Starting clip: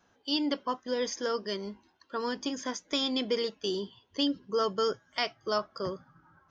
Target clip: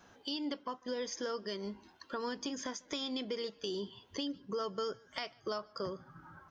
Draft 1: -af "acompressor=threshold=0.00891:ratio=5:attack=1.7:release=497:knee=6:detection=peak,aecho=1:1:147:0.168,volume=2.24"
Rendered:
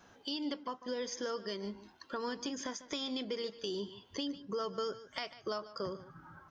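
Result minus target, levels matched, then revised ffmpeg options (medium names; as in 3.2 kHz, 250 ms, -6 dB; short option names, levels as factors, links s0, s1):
echo-to-direct +10.5 dB
-af "acompressor=threshold=0.00891:ratio=5:attack=1.7:release=497:knee=6:detection=peak,aecho=1:1:147:0.0501,volume=2.24"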